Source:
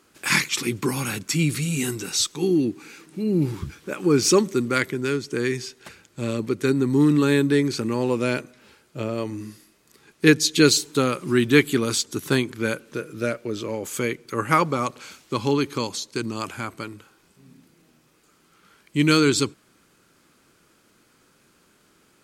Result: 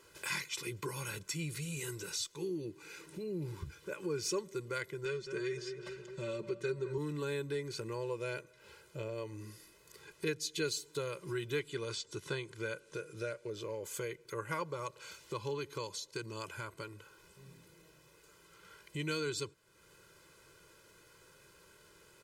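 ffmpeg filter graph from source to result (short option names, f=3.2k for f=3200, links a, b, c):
-filter_complex "[0:a]asettb=1/sr,asplit=3[a][b][c];[a]atrim=end=5.054[d];[b]atrim=start=5.05:end=6.98,asetpts=PTS-STARTPTS,afade=t=in:d=0.004:c=qsin,afade=t=out:st=1.926:d=0.004:c=qsin,lowpass=6.9k,aecho=1:1:5.3:0.81,atrim=end_sample=85113,asplit=2[e][f];[f]adelay=213,lowpass=f=1.6k:p=1,volume=-11dB,asplit=2[g][h];[h]adelay=213,lowpass=f=1.6k:p=1,volume=0.52,asplit=2[i][j];[j]adelay=213,lowpass=f=1.6k:p=1,volume=0.52,asplit=2[k][l];[l]adelay=213,lowpass=f=1.6k:p=1,volume=0.52,asplit=2[m][n];[n]adelay=213,lowpass=f=1.6k:p=1,volume=0.52,asplit=2[o][p];[p]adelay=213,lowpass=f=1.6k:p=1,volume=0.52[q];[e][g][i][k][m][o][q]amix=inputs=7:normalize=0,atrim=end_sample=85113[r];[c]atrim=start=6.976[s];[d][r]acrossfade=d=0.004:c1=hsin:c2=qsin[t];[t][s]acrossfade=d=0.004:c1=qsin:c2=hsin,asettb=1/sr,asplit=3[u][v][w];[u]atrim=end=11.594[x];[v]atrim=start=11.59:end=13.5,asetpts=PTS-STARTPTS,afade=t=in:d=0.004:c=qsin,afade=t=out:st=1.906:d=0.004:c=qsin,acrossover=split=4900[y][z];[z]acompressor=threshold=-47dB:ratio=4:attack=1:release=60[aa];[y][aa]amix=inputs=2:normalize=0,lowpass=f=9.6k:w=0.5412,lowpass=f=9.6k:w=1.3066,highshelf=f=6.3k:g=10[ab];[w]atrim=start=13.496[ac];[x][ab]acrossfade=d=0.004:c1=hsin:c2=qsin[ad];[ad][ac]acrossfade=d=0.004:c1=qsin:c2=hsin,aecho=1:1:2:0.97,acompressor=threshold=-44dB:ratio=2,volume=-4dB"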